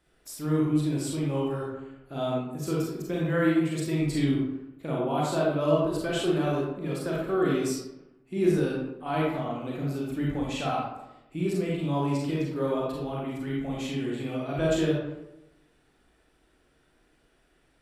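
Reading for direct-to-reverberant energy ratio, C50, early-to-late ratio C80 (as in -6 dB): -4.5 dB, -1.0 dB, 3.5 dB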